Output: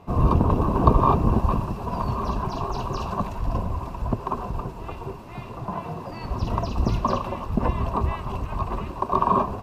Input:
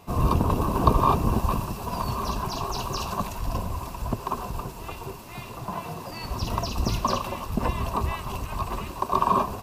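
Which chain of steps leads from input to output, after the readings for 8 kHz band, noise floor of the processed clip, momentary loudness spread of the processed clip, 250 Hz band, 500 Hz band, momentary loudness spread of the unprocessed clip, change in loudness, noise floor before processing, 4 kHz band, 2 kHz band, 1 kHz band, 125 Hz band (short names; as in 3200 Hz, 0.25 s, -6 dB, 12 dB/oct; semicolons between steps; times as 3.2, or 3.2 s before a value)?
-11.5 dB, -37 dBFS, 14 LU, +3.5 dB, +3.0 dB, 13 LU, +2.0 dB, -40 dBFS, -7.0 dB, -2.5 dB, +1.0 dB, +3.5 dB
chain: LPF 1200 Hz 6 dB/oct; gain +3.5 dB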